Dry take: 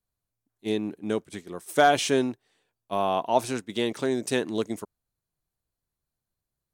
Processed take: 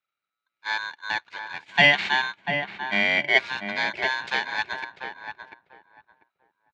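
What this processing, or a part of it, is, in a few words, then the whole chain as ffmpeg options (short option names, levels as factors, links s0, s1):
ring modulator pedal into a guitar cabinet: -filter_complex "[0:a]aeval=exprs='val(0)*sgn(sin(2*PI*1300*n/s))':c=same,highpass=100,equalizer=f=240:t=q:w=4:g=-5,equalizer=f=1100:t=q:w=4:g=-9,equalizer=f=2300:t=q:w=4:g=10,lowpass=f=4200:w=0.5412,lowpass=f=4200:w=1.3066,asettb=1/sr,asplit=3[s0][s1][s2];[s0]atrim=end=1.654[s3];[s1]atrim=start=1.65:end=3.38,asetpts=PTS-STARTPTS,afade=t=in:d=0.004:c=qsin,afade=t=out:st=1.726:d=0.004:c=qsin,equalizer=f=200:t=o:w=0.33:g=11,equalizer=f=500:t=o:w=0.33:g=-10,equalizer=f=800:t=o:w=0.33:g=4,equalizer=f=3150:t=o:w=0.33:g=5,equalizer=f=5000:t=o:w=0.33:g=-7,equalizer=f=10000:t=o:w=0.33:g=-5[s4];[s2]atrim=start=3.376[s5];[s3][s4]acrossfade=d=0.004:c1=hsin:c2=qsin[s6];[s6][s5]acrossfade=d=0.004:c1=qsin:c2=hsin,asplit=2[s7][s8];[s8]adelay=693,lowpass=f=1200:p=1,volume=0.562,asplit=2[s9][s10];[s10]adelay=693,lowpass=f=1200:p=1,volume=0.22,asplit=2[s11][s12];[s12]adelay=693,lowpass=f=1200:p=1,volume=0.22[s13];[s7][s9][s11][s13]amix=inputs=4:normalize=0"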